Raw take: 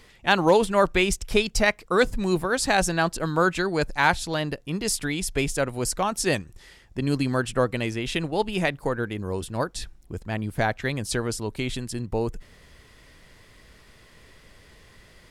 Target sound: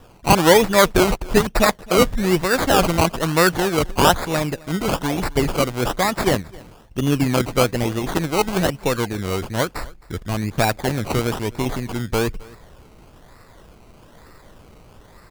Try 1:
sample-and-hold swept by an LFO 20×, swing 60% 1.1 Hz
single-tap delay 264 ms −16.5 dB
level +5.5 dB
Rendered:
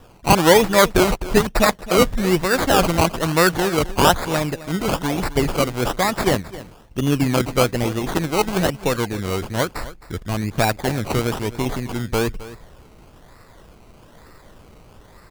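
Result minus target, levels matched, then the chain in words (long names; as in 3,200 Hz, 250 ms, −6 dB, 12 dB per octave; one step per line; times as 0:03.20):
echo-to-direct +6.5 dB
sample-and-hold swept by an LFO 20×, swing 60% 1.1 Hz
single-tap delay 264 ms −23 dB
level +5.5 dB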